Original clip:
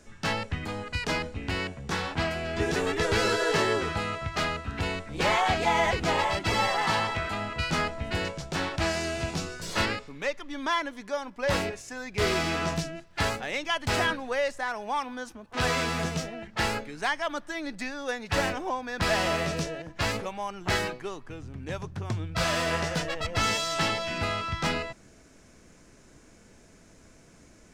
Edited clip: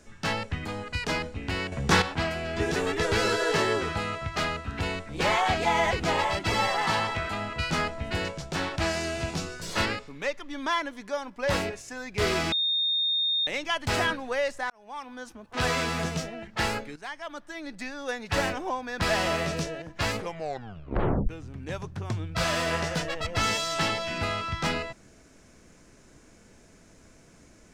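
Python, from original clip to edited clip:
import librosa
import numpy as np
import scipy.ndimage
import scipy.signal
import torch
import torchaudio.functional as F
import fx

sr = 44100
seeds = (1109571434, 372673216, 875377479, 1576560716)

y = fx.edit(x, sr, fx.clip_gain(start_s=1.72, length_s=0.3, db=9.5),
    fx.bleep(start_s=12.52, length_s=0.95, hz=3670.0, db=-23.0),
    fx.fade_in_span(start_s=14.7, length_s=0.74),
    fx.fade_in_from(start_s=16.96, length_s=1.25, floor_db=-12.5),
    fx.tape_stop(start_s=20.18, length_s=1.11), tone=tone)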